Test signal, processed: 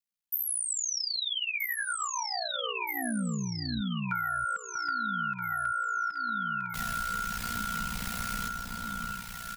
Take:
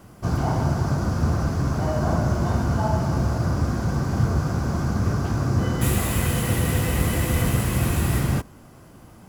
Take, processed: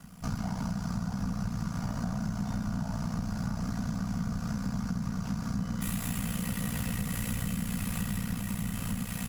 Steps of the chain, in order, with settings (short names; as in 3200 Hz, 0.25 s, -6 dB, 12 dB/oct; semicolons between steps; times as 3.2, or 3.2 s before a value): tilt shelf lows -6 dB; reverse; upward compressor, threshold -37 dBFS; reverse; comb 4.2 ms, depth 66%; on a send: echo with dull and thin repeats by turns 0.637 s, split 1300 Hz, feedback 74%, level -4.5 dB; on the sum: ring modulator 30 Hz; resonant low shelf 260 Hz +8.5 dB, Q 3; compressor 6:1, threshold -24 dBFS; gain -5 dB